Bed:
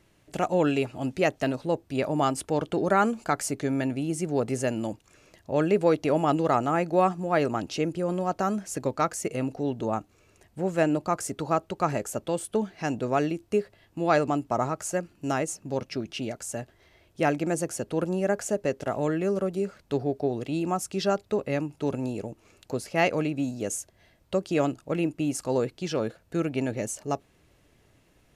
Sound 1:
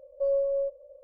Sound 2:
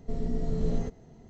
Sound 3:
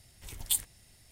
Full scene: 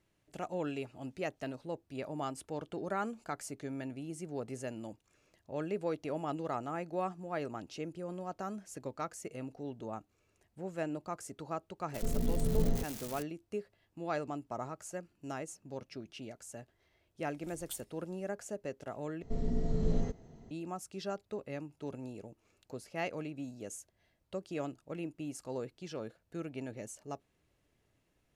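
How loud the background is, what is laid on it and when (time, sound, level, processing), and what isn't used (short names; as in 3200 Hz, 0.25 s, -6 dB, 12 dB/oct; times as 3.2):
bed -13.5 dB
11.94 add 2 -2 dB + switching spikes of -27.5 dBFS
17.2 add 3 -15 dB
19.22 replace with 2 -2.5 dB
not used: 1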